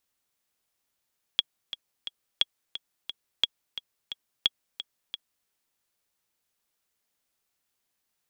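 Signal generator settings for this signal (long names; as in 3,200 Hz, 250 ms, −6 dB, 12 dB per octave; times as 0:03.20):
click track 176 BPM, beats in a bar 3, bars 4, 3,330 Hz, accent 13 dB −8 dBFS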